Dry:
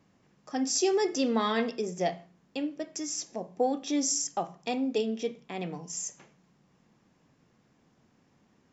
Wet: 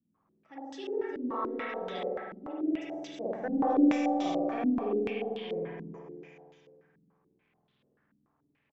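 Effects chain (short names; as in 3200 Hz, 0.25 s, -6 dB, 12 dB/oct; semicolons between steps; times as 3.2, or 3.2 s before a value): Doppler pass-by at 3.74, 18 m/s, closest 14 m; resonator 380 Hz, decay 0.65 s, mix 60%; crackle 100/s -66 dBFS; soft clip -29 dBFS, distortion -18 dB; on a send: feedback echo 0.206 s, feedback 51%, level -8 dB; on the sum: spring tank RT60 2.1 s, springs 48 ms, chirp 35 ms, DRR -8 dB; stepped low-pass 6.9 Hz 240–3500 Hz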